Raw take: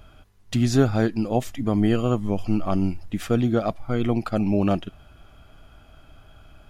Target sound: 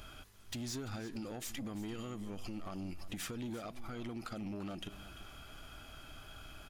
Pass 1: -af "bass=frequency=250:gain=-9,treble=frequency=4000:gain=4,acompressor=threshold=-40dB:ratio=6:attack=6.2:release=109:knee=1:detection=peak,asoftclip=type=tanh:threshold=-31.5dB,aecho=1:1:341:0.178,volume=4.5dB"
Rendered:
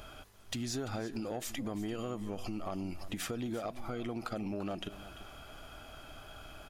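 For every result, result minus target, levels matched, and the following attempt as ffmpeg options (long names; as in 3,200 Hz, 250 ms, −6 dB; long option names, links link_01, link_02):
soft clipping: distortion −9 dB; 500 Hz band +3.0 dB
-af "bass=frequency=250:gain=-9,treble=frequency=4000:gain=4,acompressor=threshold=-40dB:ratio=6:attack=6.2:release=109:knee=1:detection=peak,asoftclip=type=tanh:threshold=-41dB,aecho=1:1:341:0.178,volume=4.5dB"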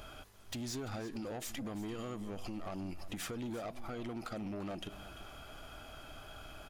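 500 Hz band +2.5 dB
-af "bass=frequency=250:gain=-9,treble=frequency=4000:gain=4,acompressor=threshold=-40dB:ratio=6:attack=6.2:release=109:knee=1:detection=peak,equalizer=frequency=640:width_type=o:width=1.5:gain=-7,asoftclip=type=tanh:threshold=-41dB,aecho=1:1:341:0.178,volume=4.5dB"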